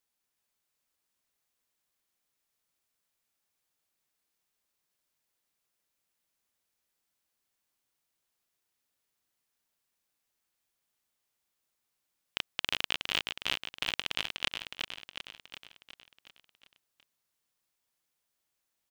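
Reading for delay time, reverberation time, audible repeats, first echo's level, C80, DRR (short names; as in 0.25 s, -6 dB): 0.365 s, none, 6, -5.0 dB, none, none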